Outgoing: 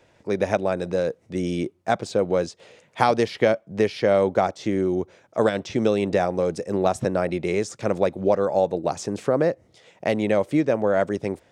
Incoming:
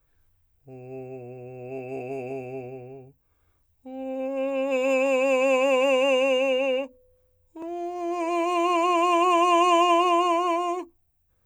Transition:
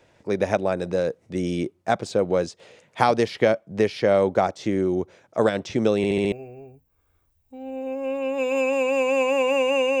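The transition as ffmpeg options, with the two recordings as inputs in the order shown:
-filter_complex "[0:a]apad=whole_dur=10,atrim=end=10,asplit=5[s0][s1][s2][s3][s4];[s0]atrim=end=6.042[s5];[s1]atrim=start=5.968:end=6.042[s6];[s2]atrim=start=5.968:end=6.042[s7];[s3]atrim=start=5.968:end=6.042[s8];[s4]atrim=start=5.968:end=6.042[s9];[1:a]atrim=start=2.648:end=6.33[s10];[s5][s6]acrossfade=d=0.004:c1=hsin:c2=hsin[s11];[s11][s7]acrossfade=d=0.004:c1=hsin:c2=hsin[s12];[s12][s8]acrossfade=d=0.004:c1=hsin:c2=hsin[s13];[s13][s9]acrossfade=d=0.004:c1=hsin:c2=hsin[s14];[s14][s10]acrossfade=d=0.004:c1=hsin:c2=hsin"

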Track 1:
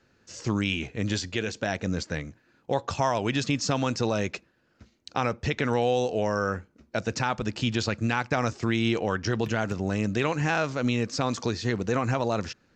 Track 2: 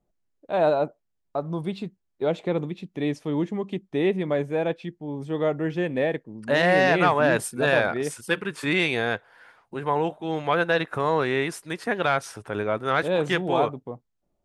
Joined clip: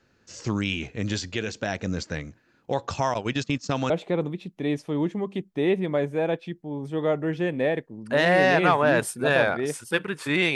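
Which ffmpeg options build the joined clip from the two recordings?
-filter_complex "[0:a]asettb=1/sr,asplit=3[s0][s1][s2];[s0]atrim=end=3.144[s3];[s1]atrim=start=3.14:end=3.9,asetpts=PTS-STARTPTS,afade=t=in:d=0.004:c=qsin,afade=t=out:st=0.756:d=0.004:c=qsin,agate=range=0.141:threshold=0.0355:ratio=16:release=100:detection=peak[s4];[s2]atrim=start=3.896[s5];[s3][s4]acrossfade=d=0.004:c1=hsin:c2=qsin[s6];[s6][s5]acrossfade=d=0.004:c1=qsin:c2=hsin,apad=whole_dur=10.55,atrim=end=10.55,atrim=end=3.902[s7];[1:a]atrim=start=2.268:end=8.92[s8];[s7][s8]acrossfade=d=0.004:c1=hsin:c2=hsin"

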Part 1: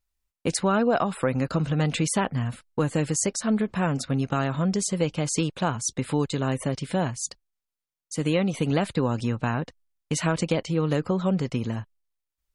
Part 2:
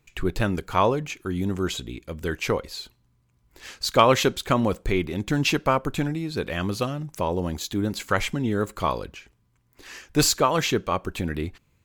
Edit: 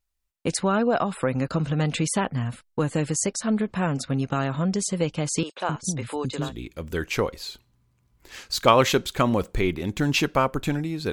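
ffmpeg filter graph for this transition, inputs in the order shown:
-filter_complex "[0:a]asettb=1/sr,asplit=3[s0][s1][s2];[s0]atrim=end=5.434[s3];[s1]atrim=start=5.43:end=6.53,asetpts=PTS-STARTPTS,afade=t=in:d=0.004:c=qsin,afade=t=out:st=1.096:d=0.004:c=qsin,acrossover=split=320|5200[s4][s5][s6];[s6]adelay=30[s7];[s4]adelay=260[s8];[s8][s5][s7]amix=inputs=3:normalize=0,atrim=end_sample=48510[s9];[s2]atrim=start=6.526[s10];[s3][s9]acrossfade=d=0.004:c1=hsin:c2=qsin[s11];[s11][s10]acrossfade=d=0.004:c1=qsin:c2=hsin,apad=whole_dur=11.12,atrim=end=11.12,atrim=end=6.53,asetpts=PTS-STARTPTS[s12];[1:a]atrim=start=1.72:end=6.43,asetpts=PTS-STARTPTS[s13];[s12][s13]acrossfade=d=0.12:c1=tri:c2=tri"

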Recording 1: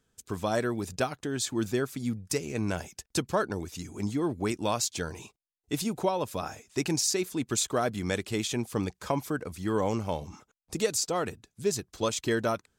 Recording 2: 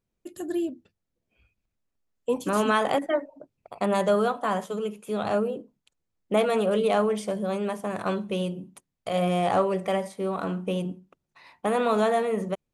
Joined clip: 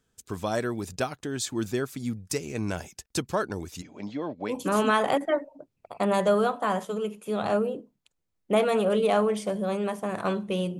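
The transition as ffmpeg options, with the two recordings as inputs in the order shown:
-filter_complex "[0:a]asplit=3[s0][s1][s2];[s0]afade=t=out:st=3.81:d=0.02[s3];[s1]highpass=230,equalizer=f=370:t=q:w=4:g=-9,equalizer=f=580:t=q:w=4:g=10,equalizer=f=1300:t=q:w=4:g=-5,lowpass=f=4300:w=0.5412,lowpass=f=4300:w=1.3066,afade=t=in:st=3.81:d=0.02,afade=t=out:st=4.55:d=0.02[s4];[s2]afade=t=in:st=4.55:d=0.02[s5];[s3][s4][s5]amix=inputs=3:normalize=0,apad=whole_dur=10.79,atrim=end=10.79,atrim=end=4.55,asetpts=PTS-STARTPTS[s6];[1:a]atrim=start=2.28:end=8.6,asetpts=PTS-STARTPTS[s7];[s6][s7]acrossfade=d=0.08:c1=tri:c2=tri"

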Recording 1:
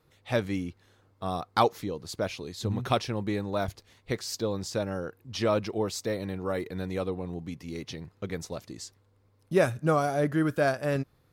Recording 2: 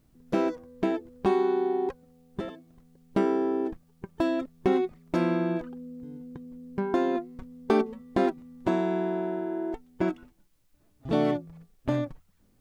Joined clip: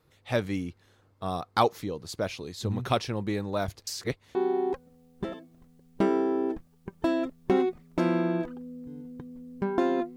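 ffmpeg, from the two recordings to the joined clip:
-filter_complex "[0:a]apad=whole_dur=10.16,atrim=end=10.16,asplit=2[s0][s1];[s0]atrim=end=3.872[s2];[s1]atrim=start=3.868:end=4.352,asetpts=PTS-STARTPTS,areverse[s3];[1:a]atrim=start=1.508:end=7.32[s4];[s2][s3]acrossfade=d=0.004:c1=hsin:c2=hsin[s5];[s5][s4]acrossfade=d=0.004:c1=hsin:c2=hsin"

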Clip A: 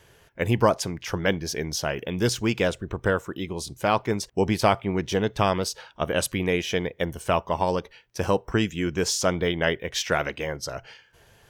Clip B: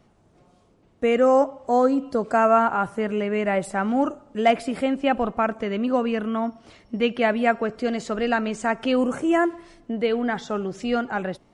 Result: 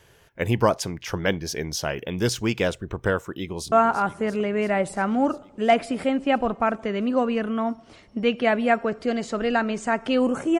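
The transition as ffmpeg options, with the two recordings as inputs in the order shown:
-filter_complex "[0:a]apad=whole_dur=10.59,atrim=end=10.59,atrim=end=3.722[s0];[1:a]atrim=start=2.488:end=9.36[s1];[s0][s1]acrossfade=d=0.004:c1=hsin:c2=hsin,asplit=2[s2][s3];[s3]afade=t=in:st=3.37:d=0.01,afade=t=out:st=3.72:d=0.01,aecho=0:1:340|680|1020|1360|1700|2040|2380|2720|3060|3400|3740|4080:0.237137|0.177853|0.13339|0.100042|0.0750317|0.0562738|0.0422054|0.031654|0.0237405|0.0178054|0.013354|0.0100155[s4];[s2][s4]amix=inputs=2:normalize=0"

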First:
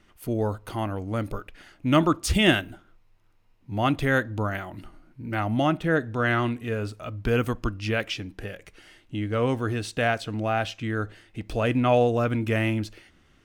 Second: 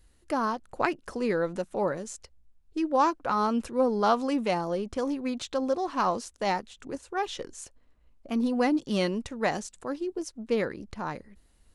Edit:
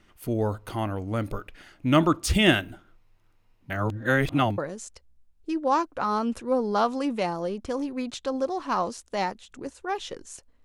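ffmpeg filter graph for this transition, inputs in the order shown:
-filter_complex "[0:a]apad=whole_dur=10.64,atrim=end=10.64,asplit=2[s0][s1];[s0]atrim=end=3.702[s2];[s1]atrim=start=3.698:end=4.582,asetpts=PTS-STARTPTS,areverse[s3];[1:a]atrim=start=1.858:end=7.92[s4];[s2][s3]acrossfade=d=0.004:c1=hsin:c2=hsin[s5];[s5][s4]acrossfade=d=0.004:c1=hsin:c2=hsin"

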